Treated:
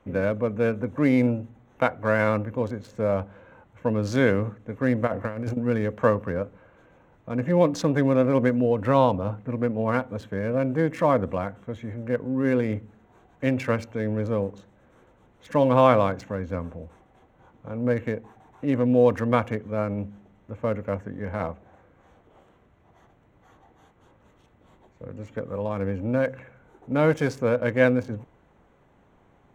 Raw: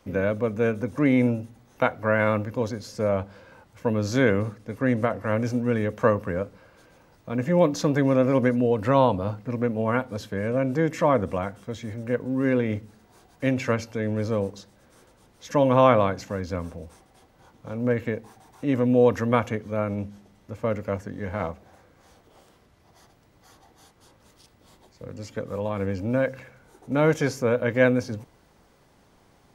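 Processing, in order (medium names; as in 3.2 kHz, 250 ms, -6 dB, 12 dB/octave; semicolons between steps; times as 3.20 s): local Wiener filter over 9 samples; 5.07–5.57 s: compressor with a negative ratio -28 dBFS, ratio -0.5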